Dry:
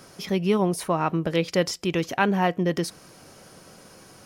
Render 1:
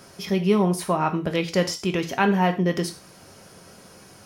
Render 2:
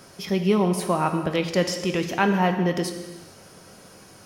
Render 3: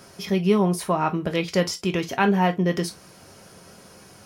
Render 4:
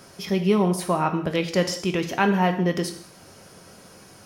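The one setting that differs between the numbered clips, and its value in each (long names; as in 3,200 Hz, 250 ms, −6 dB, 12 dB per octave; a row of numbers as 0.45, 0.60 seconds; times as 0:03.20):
reverb whose tail is shaped and stops, gate: 140, 480, 80, 230 milliseconds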